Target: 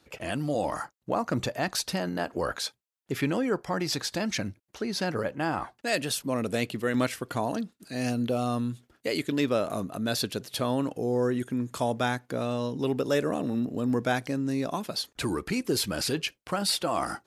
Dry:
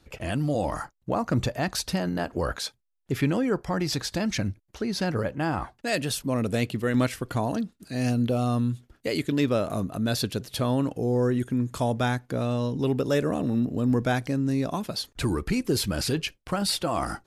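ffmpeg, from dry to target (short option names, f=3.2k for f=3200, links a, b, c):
-af "highpass=f=260:p=1"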